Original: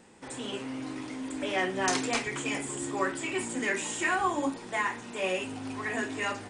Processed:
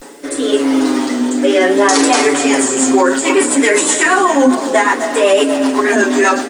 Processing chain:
high-pass filter 260 Hz 24 dB per octave
parametric band 2,500 Hz −7.5 dB 0.77 octaves
comb filter 7.2 ms, depth 95%
reversed playback
upward compression, threshold −42 dBFS
reversed playback
pitch vibrato 0.61 Hz 93 cents
background noise white −68 dBFS
rotating-speaker cabinet horn 0.85 Hz, later 8 Hz, at 0:02.23
on a send at −12.5 dB: single-tap delay 485 ms −8 dB + convolution reverb RT60 0.80 s, pre-delay 214 ms
on the sum: boost into a limiter +23 dB
level −1 dB

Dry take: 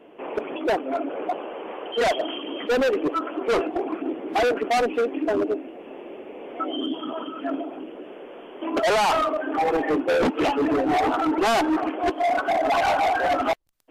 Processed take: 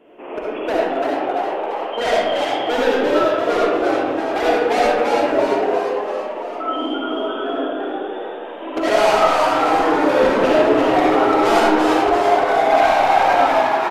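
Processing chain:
on a send: echo with shifted repeats 341 ms, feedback 55%, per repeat +99 Hz, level −3.5 dB
on the sum: comb and all-pass reverb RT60 1.2 s, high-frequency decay 0.55×, pre-delay 25 ms, DRR −5 dB
level −2 dB

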